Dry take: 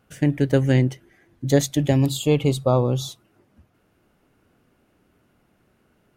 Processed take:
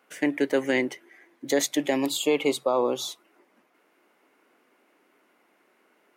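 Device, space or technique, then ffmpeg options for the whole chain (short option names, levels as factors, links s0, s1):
laptop speaker: -af "highpass=f=290:w=0.5412,highpass=f=290:w=1.3066,equalizer=f=1000:t=o:w=0.48:g=5,equalizer=f=2100:t=o:w=0.47:g=7.5,alimiter=limit=0.237:level=0:latency=1:release=20"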